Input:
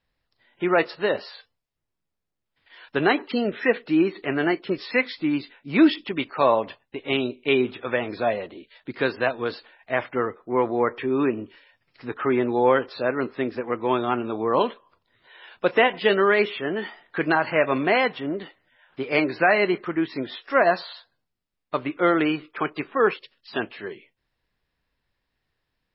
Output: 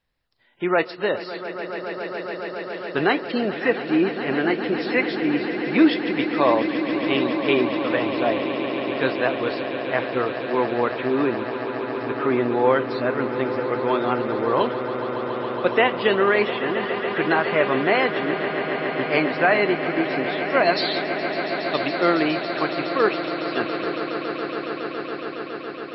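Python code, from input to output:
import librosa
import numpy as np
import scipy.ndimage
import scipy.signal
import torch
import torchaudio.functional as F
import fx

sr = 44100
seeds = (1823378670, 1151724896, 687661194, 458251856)

y = fx.high_shelf_res(x, sr, hz=2400.0, db=10.0, q=1.5, at=(20.54, 21.88))
y = fx.echo_swell(y, sr, ms=139, loudest=8, wet_db=-13.5)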